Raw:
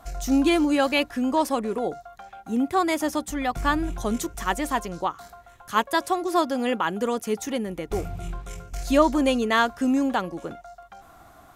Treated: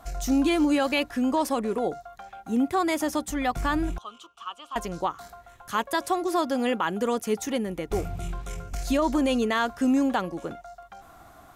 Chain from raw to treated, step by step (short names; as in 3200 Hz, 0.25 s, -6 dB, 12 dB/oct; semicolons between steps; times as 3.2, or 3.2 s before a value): limiter -15 dBFS, peak gain reduction 9.5 dB; 3.98–4.76 double band-pass 1900 Hz, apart 1.3 oct; 8.19–8.75 three-band squash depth 70%